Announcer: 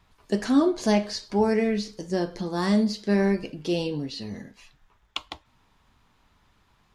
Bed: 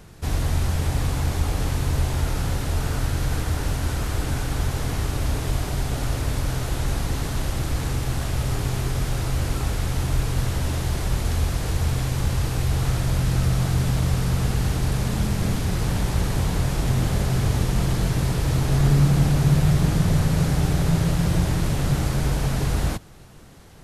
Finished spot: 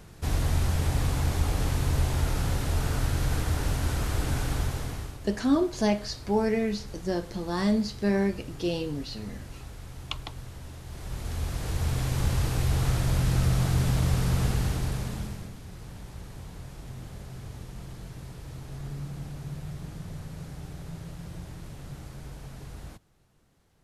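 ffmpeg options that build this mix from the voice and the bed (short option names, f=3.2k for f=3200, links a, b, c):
-filter_complex "[0:a]adelay=4950,volume=-3dB[a];[1:a]volume=12dB,afade=t=out:st=4.5:d=0.69:silence=0.177828,afade=t=in:st=10.85:d=1.38:silence=0.177828,afade=t=out:st=14.44:d=1.07:silence=0.149624[b];[a][b]amix=inputs=2:normalize=0"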